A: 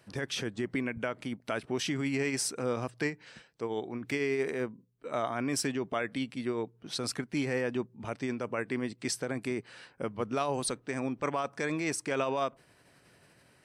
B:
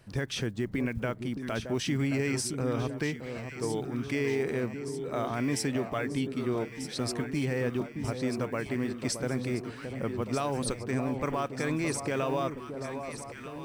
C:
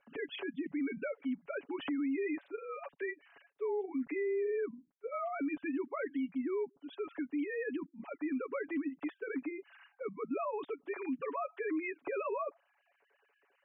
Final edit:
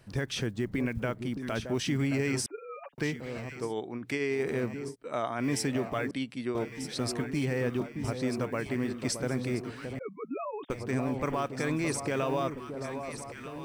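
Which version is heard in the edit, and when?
B
2.46–2.98 from C
3.63–4.39 from A, crossfade 0.24 s
4.91–5.41 from A, crossfade 0.10 s
6.11–6.55 from A
9.99–10.7 from C

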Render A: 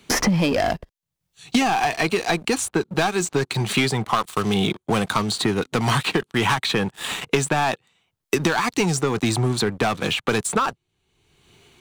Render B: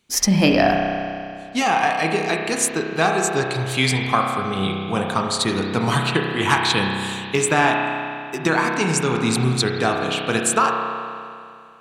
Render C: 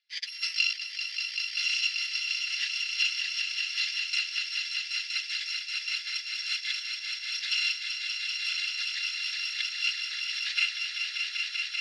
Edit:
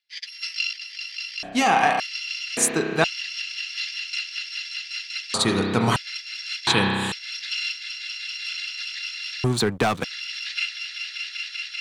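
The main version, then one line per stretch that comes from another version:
C
1.43–2 from B
2.57–3.04 from B
5.34–5.96 from B
6.67–7.12 from B
9.44–10.04 from A

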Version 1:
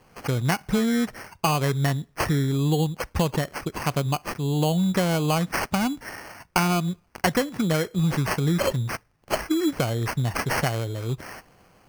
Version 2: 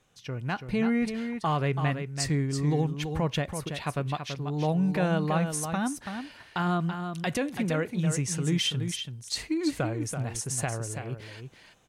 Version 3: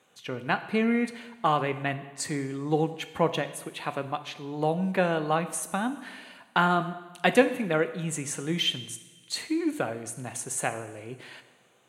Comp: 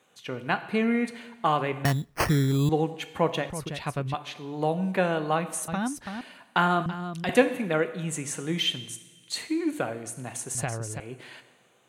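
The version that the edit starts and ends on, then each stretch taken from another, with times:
3
1.85–2.69 from 1
3.5–4.14 from 2
5.68–6.21 from 2
6.86–7.29 from 2
10.55–11 from 2

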